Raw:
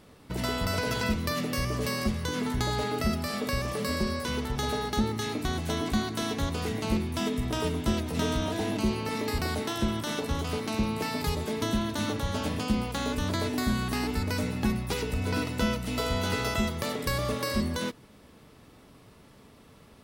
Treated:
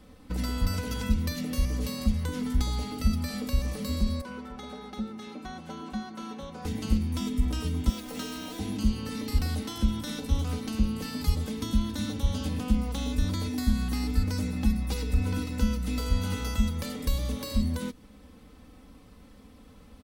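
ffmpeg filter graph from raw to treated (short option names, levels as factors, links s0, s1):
-filter_complex "[0:a]asettb=1/sr,asplit=3[s0][s1][s2];[s0]atrim=end=4.214[s3];[s1]atrim=start=4.21:end=6.65,asetpts=PTS-STARTPTS,afade=t=in:d=0.004:c=qsin,afade=t=out:st=2.436:d=0.004:c=qsin,bandpass=f=1100:t=q:w=0.61,equalizer=f=1800:w=0.36:g=-7,aecho=1:1:5.3:0.69,atrim=end_sample=107604[s4];[s2]atrim=start=6.646[s5];[s3][s4]acrossfade=d=0.004:c1=hsin:c2=qsin[s6];[s6][s5]acrossfade=d=0.004:c1=qsin:c2=hsin,asettb=1/sr,asplit=3[s7][s8][s9];[s7]atrim=end=7.894[s10];[s8]atrim=start=7.89:end=8.59,asetpts=PTS-STARTPTS,afade=t=in:d=0.004:c=qsin,afade=t=out:st=0.696:d=0.004:c=qsin,highpass=340,acrusher=bits=8:dc=4:mix=0:aa=0.000001,bandreject=f=1100:w=28[s11];[s9]atrim=start=8.586[s12];[s10][s11]acrossfade=d=0.004:c1=hsin:c2=qsin[s13];[s13][s12]acrossfade=d=0.004:c1=qsin:c2=hsin,acrossover=split=210|3000[s14][s15][s16];[s15]acompressor=threshold=0.0141:ratio=6[s17];[s14][s17][s16]amix=inputs=3:normalize=0,lowshelf=f=160:g=11.5,aecho=1:1:3.9:0.76,volume=0.631"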